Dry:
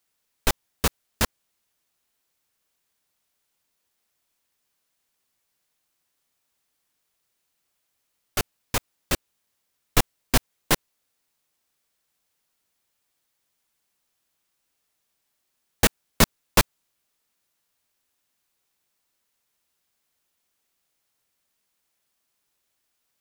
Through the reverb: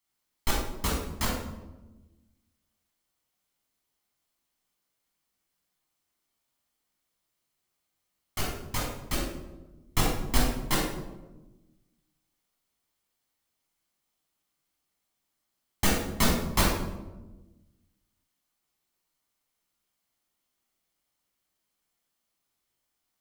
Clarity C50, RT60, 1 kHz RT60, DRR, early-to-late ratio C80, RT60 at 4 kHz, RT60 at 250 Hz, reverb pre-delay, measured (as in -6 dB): 1.5 dB, 1.1 s, 0.95 s, -4.0 dB, 5.0 dB, 0.65 s, 1.7 s, 16 ms